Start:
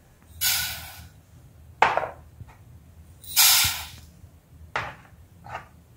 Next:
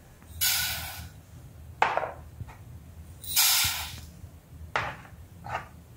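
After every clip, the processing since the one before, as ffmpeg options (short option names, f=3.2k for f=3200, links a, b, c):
-af "acompressor=threshold=-29dB:ratio=2,volume=3dB"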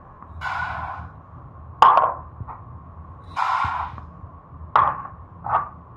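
-af "lowpass=f=1.1k:t=q:w=10,acontrast=56,volume=-1dB"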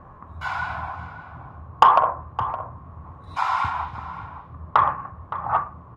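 -filter_complex "[0:a]asplit=2[a][b];[b]adelay=565.6,volume=-12dB,highshelf=f=4k:g=-12.7[c];[a][c]amix=inputs=2:normalize=0,volume=-1dB"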